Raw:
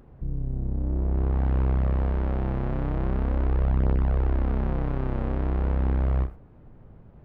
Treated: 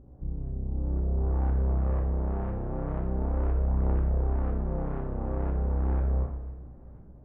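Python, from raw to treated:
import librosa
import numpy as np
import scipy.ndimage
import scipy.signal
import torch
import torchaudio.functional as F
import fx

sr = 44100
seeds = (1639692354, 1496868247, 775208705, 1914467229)

y = fx.filter_lfo_lowpass(x, sr, shape='saw_up', hz=2.0, low_hz=530.0, high_hz=1900.0, q=0.72)
y = fx.rev_double_slope(y, sr, seeds[0], early_s=0.83, late_s=3.4, knee_db=-19, drr_db=-0.5)
y = fx.add_hum(y, sr, base_hz=60, snr_db=28)
y = y * librosa.db_to_amplitude(-4.5)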